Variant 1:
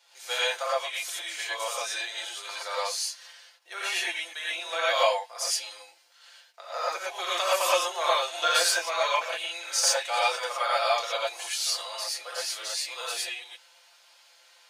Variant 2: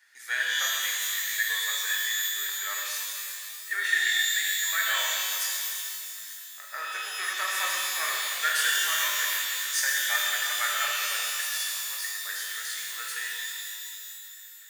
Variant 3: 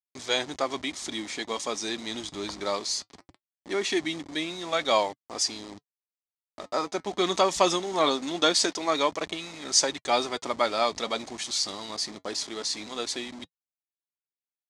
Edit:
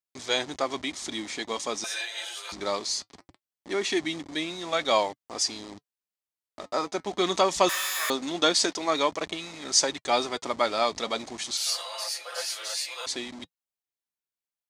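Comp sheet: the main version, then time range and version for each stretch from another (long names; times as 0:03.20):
3
0:01.84–0:02.52: punch in from 1
0:07.69–0:08.10: punch in from 2
0:11.57–0:13.06: punch in from 1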